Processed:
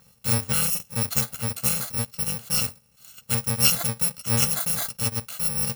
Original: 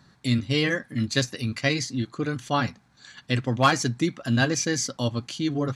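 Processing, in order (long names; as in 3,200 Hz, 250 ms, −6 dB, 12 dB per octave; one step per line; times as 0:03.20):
samples in bit-reversed order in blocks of 128 samples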